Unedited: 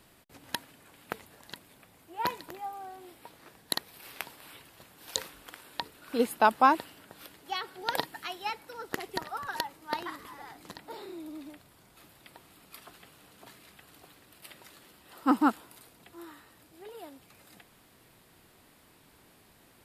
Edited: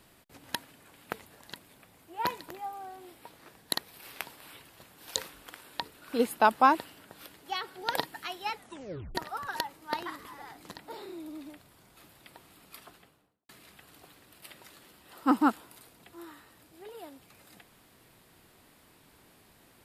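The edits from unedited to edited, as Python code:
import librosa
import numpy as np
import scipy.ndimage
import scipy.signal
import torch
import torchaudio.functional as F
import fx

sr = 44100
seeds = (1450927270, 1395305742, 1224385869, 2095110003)

y = fx.studio_fade_out(x, sr, start_s=12.76, length_s=0.73)
y = fx.edit(y, sr, fx.tape_stop(start_s=8.54, length_s=0.61), tone=tone)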